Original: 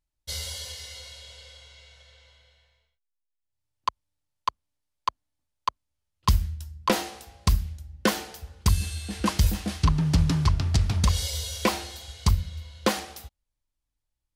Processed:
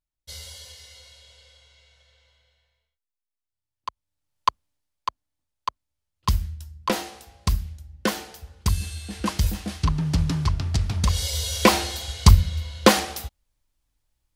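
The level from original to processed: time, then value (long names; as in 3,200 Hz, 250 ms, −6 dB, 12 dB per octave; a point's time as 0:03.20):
0:03.88 −6 dB
0:04.48 +6.5 dB
0:05.08 −1 dB
0:10.96 −1 dB
0:11.76 +9 dB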